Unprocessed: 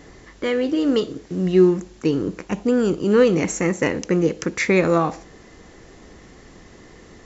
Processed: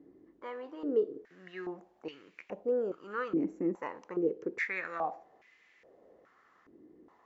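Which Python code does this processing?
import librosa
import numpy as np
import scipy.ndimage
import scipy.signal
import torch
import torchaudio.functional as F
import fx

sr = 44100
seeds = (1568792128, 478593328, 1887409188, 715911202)

y = fx.filter_held_bandpass(x, sr, hz=2.4, low_hz=310.0, high_hz=2300.0)
y = y * librosa.db_to_amplitude(-5.0)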